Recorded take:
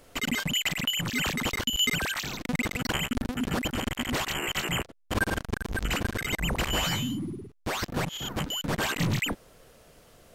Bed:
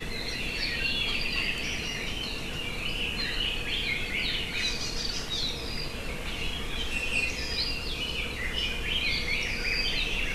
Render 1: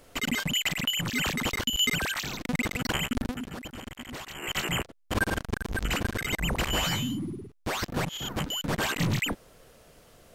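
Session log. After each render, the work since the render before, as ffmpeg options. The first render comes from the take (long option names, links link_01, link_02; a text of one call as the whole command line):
ffmpeg -i in.wav -filter_complex "[0:a]asplit=3[link_01][link_02][link_03];[link_01]atrim=end=3.51,asetpts=PTS-STARTPTS,afade=type=out:start_time=3.31:duration=0.2:curve=qua:silence=0.298538[link_04];[link_02]atrim=start=3.51:end=4.32,asetpts=PTS-STARTPTS,volume=-10.5dB[link_05];[link_03]atrim=start=4.32,asetpts=PTS-STARTPTS,afade=type=in:duration=0.2:curve=qua:silence=0.298538[link_06];[link_04][link_05][link_06]concat=n=3:v=0:a=1" out.wav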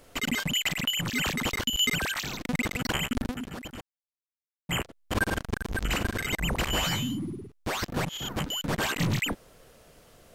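ffmpeg -i in.wav -filter_complex "[0:a]asettb=1/sr,asplit=3[link_01][link_02][link_03];[link_01]atrim=end=5.844[link_04];[link_02]atrim=start=5.84:end=6.26,asetpts=PTS-STARTPTS,afade=type=in:duration=0.004:curve=qsin,afade=type=out:start_time=0.416:duration=0.004:curve=qsin,asplit=2[link_05][link_06];[link_06]adelay=43,volume=-10dB[link_07];[link_05][link_07]amix=inputs=2:normalize=0,atrim=end_sample=18522[link_08];[link_03]atrim=start=6.256[link_09];[link_04][link_08]acrossfade=duration=0.004:curve1=hsin:curve2=qsin[link_10];[link_10][link_09]acrossfade=duration=0.004:curve1=qsin:curve2=hsin,asplit=3[link_11][link_12][link_13];[link_11]atrim=end=3.81,asetpts=PTS-STARTPTS,afade=type=out:start_time=3.806:duration=0.004:curve=hsin[link_14];[link_12]atrim=start=3.81:end=4.69,asetpts=PTS-STARTPTS,volume=0[link_15];[link_13]atrim=start=4.69,asetpts=PTS-STARTPTS,afade=type=in:duration=0.004:curve=hsin[link_16];[link_14][link_15][link_16]concat=n=3:v=0:a=1" out.wav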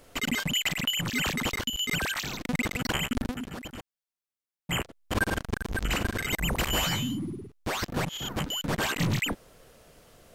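ffmpeg -i in.wav -filter_complex "[0:a]asettb=1/sr,asplit=3[link_01][link_02][link_03];[link_01]atrim=end=6.304[link_04];[link_02]atrim=start=6.3:end=6.85,asetpts=PTS-STARTPTS,afade=type=in:duration=0.004:curve=qsin,afade=type=out:start_time=0.546:duration=0.004:curve=qsin,highshelf=frequency=11000:gain=9[link_05];[link_03]atrim=start=6.846[link_06];[link_04][link_05]acrossfade=duration=0.004:curve1=hsin:curve2=qsin[link_07];[link_07][link_06]acrossfade=duration=0.004:curve1=qsin:curve2=hsin,asplit=2[link_08][link_09];[link_08]atrim=end=1.89,asetpts=PTS-STARTPTS,afade=type=out:start_time=1.36:duration=0.53:curve=qsin:silence=0.398107[link_10];[link_09]atrim=start=1.89,asetpts=PTS-STARTPTS,afade=type=in:duration=0.004:curve=hsin:silence=0.398107[link_11];[link_10][link_11]concat=n=2:v=0:a=1" out.wav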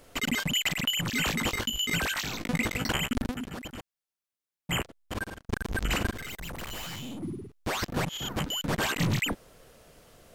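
ffmpeg -i in.wav -filter_complex "[0:a]asettb=1/sr,asplit=3[link_01][link_02][link_03];[link_01]atrim=end=1.134[link_04];[link_02]atrim=start=1.13:end=2.92,asetpts=PTS-STARTPTS,afade=type=in:duration=0.004:curve=qsin,afade=type=out:start_time=1.786:duration=0.004:curve=qsin,asplit=2[link_05][link_06];[link_06]adelay=18,volume=-8dB[link_07];[link_05][link_07]amix=inputs=2:normalize=0,atrim=end_sample=78939[link_08];[link_03]atrim=start=2.916[link_09];[link_04][link_08]acrossfade=duration=0.004:curve1=hsin:curve2=qsin[link_10];[link_10][link_09]acrossfade=duration=0.004:curve1=qsin:curve2=hsin,asettb=1/sr,asplit=3[link_11][link_12][link_13];[link_11]atrim=end=6.124[link_14];[link_12]atrim=start=6.12:end=7.23,asetpts=PTS-STARTPTS,afade=type=in:duration=0.004:curve=qsin,afade=type=out:start_time=1.106:duration=0.004:curve=qsin,aeval=exprs='(tanh(70.8*val(0)+0.55)-tanh(0.55))/70.8':channel_layout=same[link_15];[link_13]atrim=start=7.226[link_16];[link_14][link_15]acrossfade=duration=0.004:curve1=hsin:curve2=qsin[link_17];[link_17][link_16]acrossfade=duration=0.004:curve1=qsin:curve2=hsin,asplit=2[link_18][link_19];[link_18]atrim=end=5.49,asetpts=PTS-STARTPTS,afade=type=out:start_time=4.8:duration=0.69[link_20];[link_19]atrim=start=5.49,asetpts=PTS-STARTPTS,afade=type=in:duration=0.004:curve=hsin[link_21];[link_20][link_21]concat=n=2:v=0:a=1" out.wav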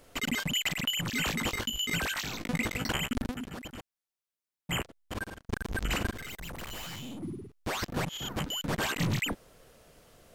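ffmpeg -i in.wav -af "volume=-2.5dB" out.wav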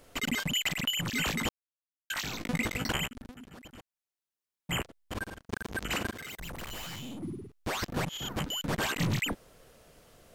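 ffmpeg -i in.wav -filter_complex "[0:a]asettb=1/sr,asplit=3[link_01][link_02][link_03];[link_01]atrim=end=5.444[link_04];[link_02]atrim=start=5.44:end=6.38,asetpts=PTS-STARTPTS,afade=type=in:duration=0.004:curve=qsin,afade=type=out:start_time=0.936:duration=0.004:curve=qsin,highpass=frequency=160:poles=1[link_05];[link_03]atrim=start=6.376[link_06];[link_04][link_05]acrossfade=duration=0.004:curve1=hsin:curve2=qsin[link_07];[link_07][link_06]acrossfade=duration=0.004:curve1=qsin:curve2=hsin,asplit=4[link_08][link_09][link_10][link_11];[link_08]atrim=end=1.49,asetpts=PTS-STARTPTS,afade=type=out:start_time=1.486:duration=0.004:curve=hsin[link_12];[link_09]atrim=start=1.49:end=2.1,asetpts=PTS-STARTPTS,volume=0[link_13];[link_10]atrim=start=2.1:end=3.08,asetpts=PTS-STARTPTS,afade=type=in:duration=0.004:curve=hsin,afade=type=out:start_time=0.976:duration=0.004:curve=hsin:silence=0.149624[link_14];[link_11]atrim=start=3.08,asetpts=PTS-STARTPTS,afade=type=in:duration=1.71:silence=0.149624[link_15];[link_12][link_13][link_14][link_15]concat=n=4:v=0:a=1" out.wav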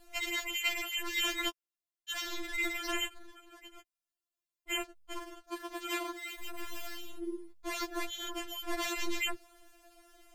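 ffmpeg -i in.wav -af "afftfilt=real='re*4*eq(mod(b,16),0)':imag='im*4*eq(mod(b,16),0)':win_size=2048:overlap=0.75" out.wav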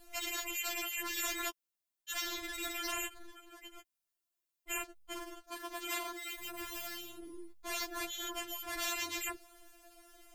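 ffmpeg -i in.wav -af "afftfilt=real='re*lt(hypot(re,im),0.1)':imag='im*lt(hypot(re,im),0.1)':win_size=1024:overlap=0.75,highshelf=frequency=8800:gain=6.5" out.wav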